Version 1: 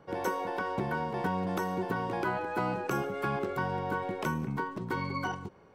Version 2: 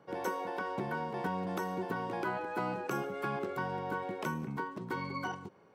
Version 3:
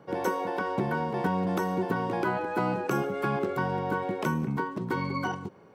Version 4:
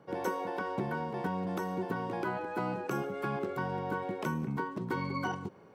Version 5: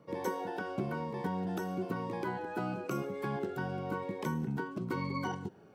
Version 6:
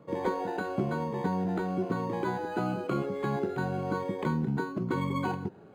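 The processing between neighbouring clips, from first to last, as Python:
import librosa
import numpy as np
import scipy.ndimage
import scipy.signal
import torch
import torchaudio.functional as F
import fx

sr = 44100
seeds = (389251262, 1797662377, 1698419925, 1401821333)

y1 = scipy.signal.sosfilt(scipy.signal.butter(2, 130.0, 'highpass', fs=sr, output='sos'), x)
y1 = F.gain(torch.from_numpy(y1), -3.5).numpy()
y2 = fx.low_shelf(y1, sr, hz=450.0, db=5.0)
y2 = F.gain(torch.from_numpy(y2), 5.0).numpy()
y3 = fx.rider(y2, sr, range_db=4, speed_s=0.5)
y3 = F.gain(torch.from_numpy(y3), -5.5).numpy()
y4 = fx.notch_cascade(y3, sr, direction='falling', hz=1.0)
y5 = np.interp(np.arange(len(y4)), np.arange(len(y4))[::8], y4[::8])
y5 = F.gain(torch.from_numpy(y5), 5.5).numpy()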